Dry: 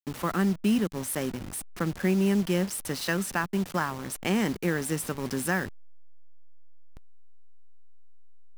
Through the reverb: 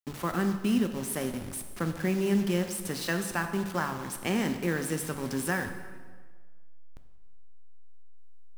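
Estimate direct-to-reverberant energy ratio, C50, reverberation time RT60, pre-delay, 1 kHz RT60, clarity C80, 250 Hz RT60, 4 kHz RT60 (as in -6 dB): 6.5 dB, 8.5 dB, 1.5 s, 7 ms, 1.5 s, 10.0 dB, 1.5 s, 1.2 s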